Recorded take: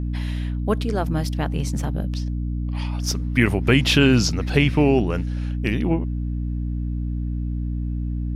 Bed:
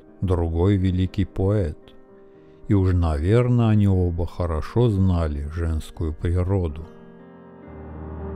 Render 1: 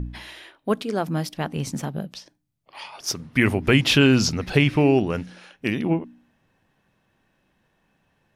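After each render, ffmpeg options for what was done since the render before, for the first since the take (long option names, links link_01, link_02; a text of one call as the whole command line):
ffmpeg -i in.wav -af "bandreject=frequency=60:width_type=h:width=4,bandreject=frequency=120:width_type=h:width=4,bandreject=frequency=180:width_type=h:width=4,bandreject=frequency=240:width_type=h:width=4,bandreject=frequency=300:width_type=h:width=4" out.wav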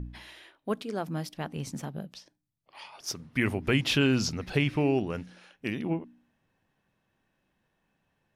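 ffmpeg -i in.wav -af "volume=-8dB" out.wav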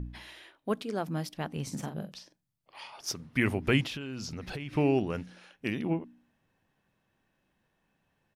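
ffmpeg -i in.wav -filter_complex "[0:a]asplit=3[link_01][link_02][link_03];[link_01]afade=type=out:start_time=1.68:duration=0.02[link_04];[link_02]asplit=2[link_05][link_06];[link_06]adelay=45,volume=-8dB[link_07];[link_05][link_07]amix=inputs=2:normalize=0,afade=type=in:start_time=1.68:duration=0.02,afade=type=out:start_time=3:duration=0.02[link_08];[link_03]afade=type=in:start_time=3:duration=0.02[link_09];[link_04][link_08][link_09]amix=inputs=3:normalize=0,asettb=1/sr,asplit=3[link_10][link_11][link_12];[link_10]atrim=end=3.844[link_13];[link_11]atrim=start=3.84:end=4.73,asetpts=PTS-STARTPTS,afade=type=in:duration=0.004:curve=qsin,afade=type=out:start_time=0.886:duration=0.004:curve=qsin,acompressor=threshold=-34dB:ratio=16:attack=3.2:release=140:knee=1:detection=peak[link_14];[link_12]atrim=start=4.726[link_15];[link_13][link_14]acrossfade=duration=0.004:curve1=hsin:curve2=qsin[link_16];[link_16][link_15]acrossfade=duration=0.004:curve1=qsin:curve2=hsin" out.wav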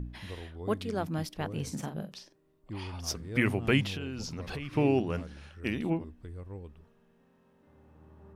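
ffmpeg -i in.wav -i bed.wav -filter_complex "[1:a]volume=-21.5dB[link_01];[0:a][link_01]amix=inputs=2:normalize=0" out.wav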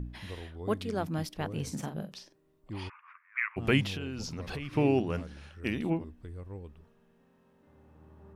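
ffmpeg -i in.wav -filter_complex "[0:a]asplit=3[link_01][link_02][link_03];[link_01]afade=type=out:start_time=2.88:duration=0.02[link_04];[link_02]asuperpass=centerf=1600:order=12:qfactor=1.1,afade=type=in:start_time=2.88:duration=0.02,afade=type=out:start_time=3.56:duration=0.02[link_05];[link_03]afade=type=in:start_time=3.56:duration=0.02[link_06];[link_04][link_05][link_06]amix=inputs=3:normalize=0" out.wav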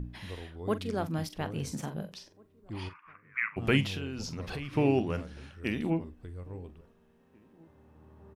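ffmpeg -i in.wav -filter_complex "[0:a]asplit=2[link_01][link_02];[link_02]adelay=43,volume=-14dB[link_03];[link_01][link_03]amix=inputs=2:normalize=0,asplit=2[link_04][link_05];[link_05]adelay=1691,volume=-28dB,highshelf=frequency=4000:gain=-38[link_06];[link_04][link_06]amix=inputs=2:normalize=0" out.wav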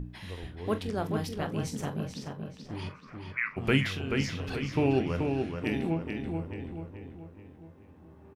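ffmpeg -i in.wav -filter_complex "[0:a]asplit=2[link_01][link_02];[link_02]adelay=23,volume=-12dB[link_03];[link_01][link_03]amix=inputs=2:normalize=0,asplit=2[link_04][link_05];[link_05]adelay=432,lowpass=frequency=4000:poles=1,volume=-4.5dB,asplit=2[link_06][link_07];[link_07]adelay=432,lowpass=frequency=4000:poles=1,volume=0.47,asplit=2[link_08][link_09];[link_09]adelay=432,lowpass=frequency=4000:poles=1,volume=0.47,asplit=2[link_10][link_11];[link_11]adelay=432,lowpass=frequency=4000:poles=1,volume=0.47,asplit=2[link_12][link_13];[link_13]adelay=432,lowpass=frequency=4000:poles=1,volume=0.47,asplit=2[link_14][link_15];[link_15]adelay=432,lowpass=frequency=4000:poles=1,volume=0.47[link_16];[link_04][link_06][link_08][link_10][link_12][link_14][link_16]amix=inputs=7:normalize=0" out.wav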